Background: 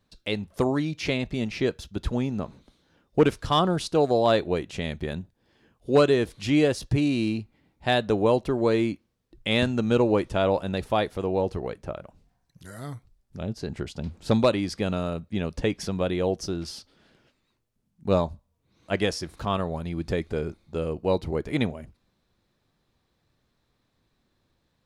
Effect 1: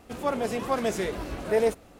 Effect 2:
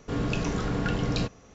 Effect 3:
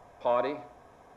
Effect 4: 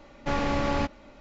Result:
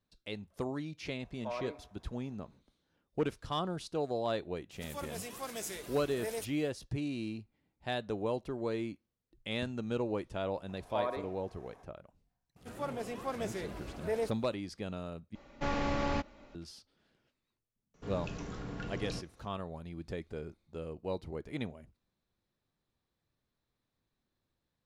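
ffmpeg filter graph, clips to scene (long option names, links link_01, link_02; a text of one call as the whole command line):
ffmpeg -i bed.wav -i cue0.wav -i cue1.wav -i cue2.wav -i cue3.wav -filter_complex "[3:a]asplit=2[link_01][link_02];[1:a]asplit=2[link_03][link_04];[0:a]volume=-13dB[link_05];[link_03]crystalizer=i=5.5:c=0[link_06];[link_02]acompressor=mode=upward:threshold=-44dB:ratio=2.5:attack=3.2:release=140:knee=2.83:detection=peak[link_07];[link_05]asplit=2[link_08][link_09];[link_08]atrim=end=15.354[link_10];[4:a]atrim=end=1.2,asetpts=PTS-STARTPTS,volume=-6dB[link_11];[link_09]atrim=start=16.546[link_12];[link_01]atrim=end=1.16,asetpts=PTS-STARTPTS,volume=-13dB,afade=type=in:duration=0.004:curve=hsin,afade=type=out:start_time=1.156:duration=0.004:curve=hsin,adelay=1200[link_13];[link_06]atrim=end=1.99,asetpts=PTS-STARTPTS,volume=-17dB,afade=type=in:duration=0.004:curve=hsin,afade=type=out:start_time=1.986:duration=0.004:curve=hsin,adelay=4710[link_14];[link_07]atrim=end=1.16,asetpts=PTS-STARTPTS,volume=-8dB,afade=type=in:duration=0.004:curve=hsin,afade=type=out:start_time=1.156:duration=0.004:curve=hsin,adelay=10690[link_15];[link_04]atrim=end=1.99,asetpts=PTS-STARTPTS,volume=-10.5dB,afade=type=in:duration=0.004:curve=hsin,afade=type=out:start_time=1.986:duration=0.004:curve=hsin,adelay=12560[link_16];[2:a]atrim=end=1.54,asetpts=PTS-STARTPTS,volume=-13.5dB,afade=type=in:duration=0.004:curve=hsin,afade=type=out:start_time=1.536:duration=0.004:curve=hsin,adelay=17940[link_17];[link_10][link_11]acrossfade=duration=0.004:curve1=hsin:curve2=hsin[link_18];[link_18][link_12]acrossfade=duration=0.004:curve1=hsin:curve2=hsin[link_19];[link_19][link_13][link_14][link_15][link_16][link_17]amix=inputs=6:normalize=0" out.wav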